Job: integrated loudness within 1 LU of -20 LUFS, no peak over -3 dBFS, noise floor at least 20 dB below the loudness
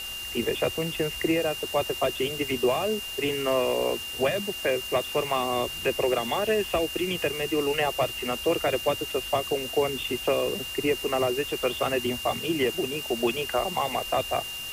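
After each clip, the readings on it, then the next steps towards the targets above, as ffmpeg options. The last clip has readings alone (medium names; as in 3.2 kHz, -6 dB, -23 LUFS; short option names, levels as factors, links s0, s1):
steady tone 2.8 kHz; tone level -34 dBFS; noise floor -36 dBFS; noise floor target -47 dBFS; loudness -26.5 LUFS; peak level -12.5 dBFS; loudness target -20.0 LUFS
-> -af "bandreject=f=2800:w=30"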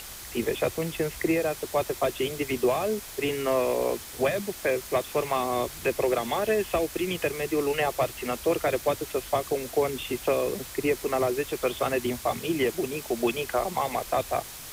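steady tone not found; noise floor -42 dBFS; noise floor target -48 dBFS
-> -af "afftdn=nr=6:nf=-42"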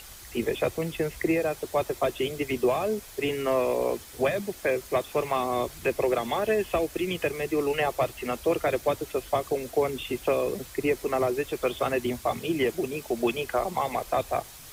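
noise floor -46 dBFS; noise floor target -48 dBFS
-> -af "afftdn=nr=6:nf=-46"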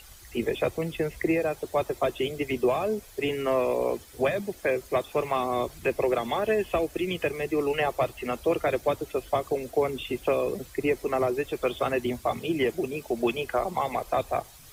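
noise floor -49 dBFS; loudness -28.0 LUFS; peak level -13.5 dBFS; loudness target -20.0 LUFS
-> -af "volume=2.51"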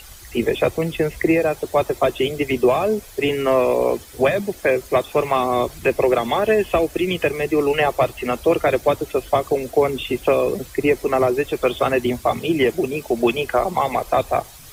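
loudness -20.0 LUFS; peak level -5.5 dBFS; noise floor -41 dBFS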